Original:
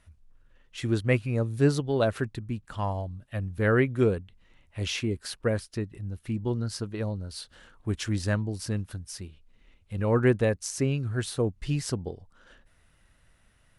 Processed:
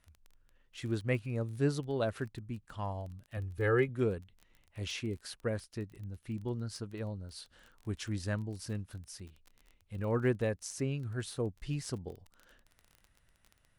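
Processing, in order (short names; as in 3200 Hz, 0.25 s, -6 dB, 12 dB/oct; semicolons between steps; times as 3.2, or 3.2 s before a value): 3.37–3.89 comb 2.4 ms, depth 72%; crackle 23/s -35 dBFS; gain -8 dB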